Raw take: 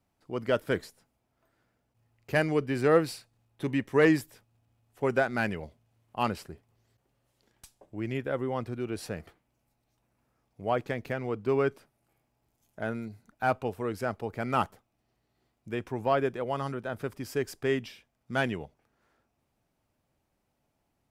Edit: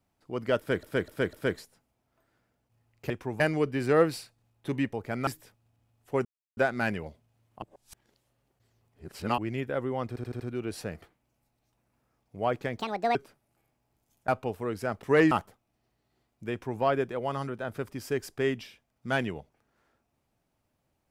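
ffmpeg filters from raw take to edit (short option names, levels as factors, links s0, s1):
-filter_complex "[0:a]asplit=20[s0][s1][s2][s3][s4][s5][s6][s7][s8][s9][s10][s11][s12][s13][s14][s15][s16][s17][s18][s19];[s0]atrim=end=0.832[s20];[s1]atrim=start=0.578:end=0.832[s21];[s2]atrim=start=0.578:end=0.832[s22];[s3]atrim=start=0.578:end=2.352[s23];[s4]atrim=start=15.758:end=16.062[s24];[s5]atrim=start=2.348:end=3.882[s25];[s6]atrim=start=14.218:end=14.562[s26];[s7]atrim=start=4.158:end=5.14,asetpts=PTS-STARTPTS,afade=t=out:st=0.978:d=0.004:c=hsin,apad=pad_dur=0.32[s27];[s8]atrim=start=5.14:end=6.192,asetpts=PTS-STARTPTS,afade=t=in:d=0.004:c=hsin[s28];[s9]atrim=start=6.188:end=7.952,asetpts=PTS-STARTPTS,areverse[s29];[s10]atrim=start=7.948:end=8.732[s30];[s11]atrim=start=8.648:end=8.732[s31];[s12]atrim=start=8.648:end=8.732[s32];[s13]atrim=start=8.648:end=8.732[s33];[s14]atrim=start=8.648:end=11.034[s34];[s15]atrim=start=11.03:end=11.67,asetpts=PTS-STARTPTS,asetrate=75852,aresample=44100,atrim=end_sample=16409,asetpts=PTS-STARTPTS[s35];[s16]atrim=start=11.666:end=12.802[s36];[s17]atrim=start=13.468:end=14.222[s37];[s18]atrim=start=3.878:end=4.162[s38];[s19]atrim=start=14.558[s39];[s20][s21]acrossfade=d=0.004:c1=hsin:c2=hsin[s40];[s40][s22]acrossfade=d=0.004:c1=hsin:c2=hsin[s41];[s41][s23]acrossfade=d=0.004:c1=hsin:c2=hsin[s42];[s42][s24]acrossfade=d=0.004:c1=hsin:c2=hsin[s43];[s43][s25]acrossfade=d=0.004:c1=hsin:c2=hsin[s44];[s44][s26]acrossfade=d=0.004:c1=hsin:c2=hsin[s45];[s27][s28]concat=n=2:v=0:a=1[s46];[s45][s46]acrossfade=d=0.004:c1=hsin:c2=hsin[s47];[s47][s29]acrossfade=d=0.004:c1=hsin:c2=hsin[s48];[s48][s30]acrossfade=d=0.004:c1=hsin:c2=hsin[s49];[s49][s31]acrossfade=d=0.004:c1=hsin:c2=hsin[s50];[s50][s32]acrossfade=d=0.004:c1=hsin:c2=hsin[s51];[s51][s33]acrossfade=d=0.004:c1=hsin:c2=hsin[s52];[s52][s34]acrossfade=d=0.004:c1=hsin:c2=hsin[s53];[s53][s35]acrossfade=d=0.004:c1=hsin:c2=hsin[s54];[s54][s36]acrossfade=d=0.004:c1=hsin:c2=hsin[s55];[s55][s37]acrossfade=d=0.004:c1=hsin:c2=hsin[s56];[s56][s38]acrossfade=d=0.004:c1=hsin:c2=hsin[s57];[s57][s39]acrossfade=d=0.004:c1=hsin:c2=hsin"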